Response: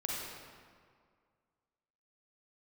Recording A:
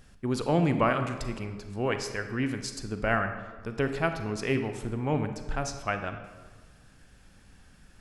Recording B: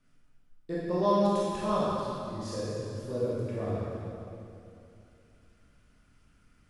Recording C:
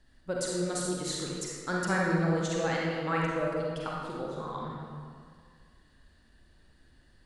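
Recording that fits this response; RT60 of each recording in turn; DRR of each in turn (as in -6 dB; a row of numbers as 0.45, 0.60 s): C; 1.4, 2.7, 2.0 s; 7.5, -8.5, -4.0 dB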